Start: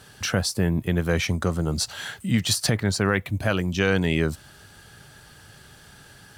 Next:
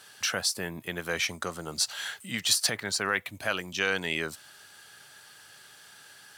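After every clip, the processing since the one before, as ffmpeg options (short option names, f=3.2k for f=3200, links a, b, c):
-af "highpass=f=1.2k:p=1"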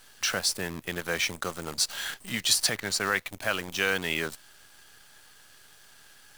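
-af "acrusher=bits=7:dc=4:mix=0:aa=0.000001,volume=1dB"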